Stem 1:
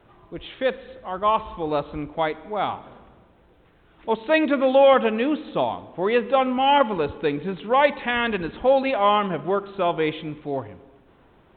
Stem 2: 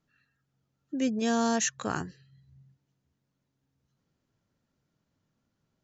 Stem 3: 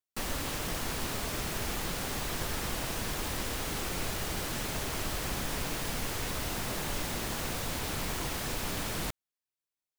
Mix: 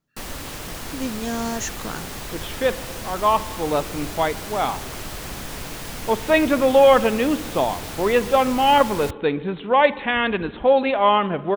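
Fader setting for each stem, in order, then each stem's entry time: +2.0 dB, -0.5 dB, +1.5 dB; 2.00 s, 0.00 s, 0.00 s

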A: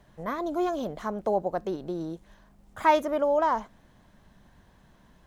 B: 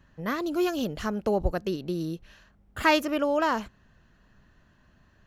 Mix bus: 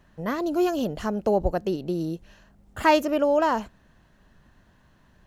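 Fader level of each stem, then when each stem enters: -4.0 dB, -0.5 dB; 0.00 s, 0.00 s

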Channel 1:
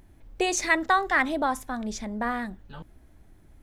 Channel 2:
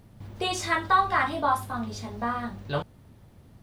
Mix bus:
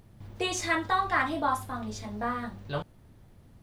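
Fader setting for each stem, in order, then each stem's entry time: -7.5 dB, -4.0 dB; 0.00 s, 0.00 s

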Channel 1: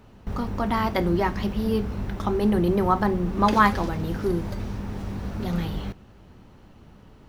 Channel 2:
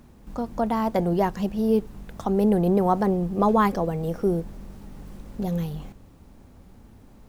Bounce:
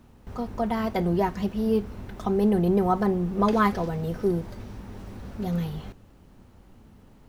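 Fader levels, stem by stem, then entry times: -7.5 dB, -4.5 dB; 0.00 s, 0.00 s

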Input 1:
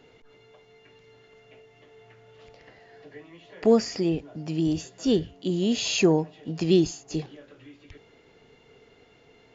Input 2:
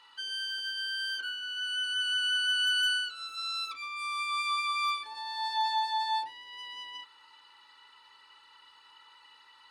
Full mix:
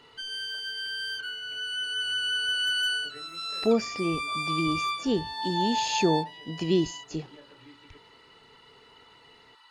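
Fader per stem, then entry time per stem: -4.0 dB, +0.5 dB; 0.00 s, 0.00 s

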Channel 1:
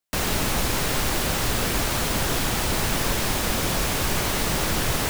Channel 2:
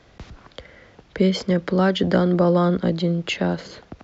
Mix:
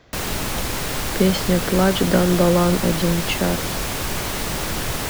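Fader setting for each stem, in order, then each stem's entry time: -1.0 dB, +1.0 dB; 0.00 s, 0.00 s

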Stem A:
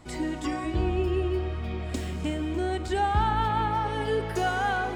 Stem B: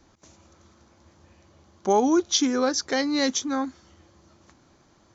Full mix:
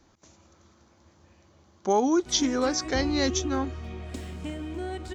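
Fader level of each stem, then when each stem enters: -5.5 dB, -2.5 dB; 2.20 s, 0.00 s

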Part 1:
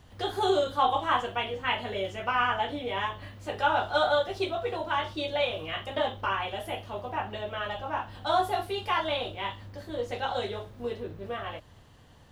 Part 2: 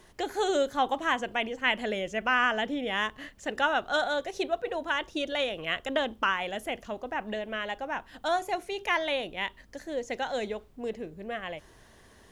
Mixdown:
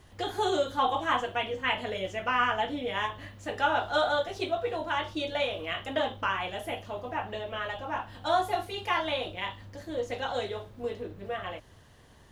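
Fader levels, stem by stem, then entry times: -2.5 dB, -5.5 dB; 0.00 s, 0.00 s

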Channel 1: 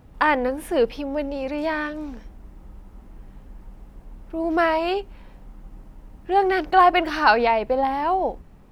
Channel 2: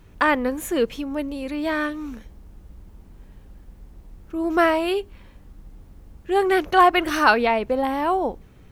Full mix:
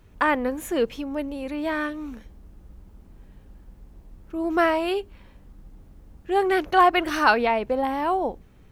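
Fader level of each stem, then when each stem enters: -13.5 dB, -4.5 dB; 0.00 s, 0.00 s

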